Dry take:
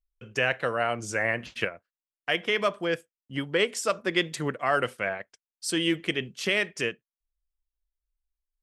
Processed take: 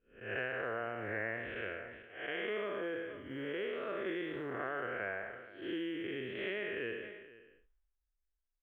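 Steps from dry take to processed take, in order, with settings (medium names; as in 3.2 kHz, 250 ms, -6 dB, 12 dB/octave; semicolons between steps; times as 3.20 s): spectral blur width 227 ms; steep low-pass 3.5 kHz 72 dB/octave; tilt shelf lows +4 dB, about 710 Hz; compression 12:1, threshold -32 dBFS, peak gain reduction 8.5 dB; short-mantissa float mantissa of 6-bit; fifteen-band graphic EQ 160 Hz -11 dB, 400 Hz +5 dB, 1.6 kHz +9 dB; delay 478 ms -18.5 dB; decay stretcher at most 44 dB/s; trim -5 dB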